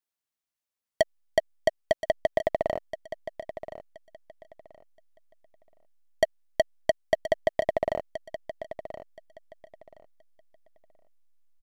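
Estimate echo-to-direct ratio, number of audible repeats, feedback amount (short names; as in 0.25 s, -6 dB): -12.5 dB, 2, 21%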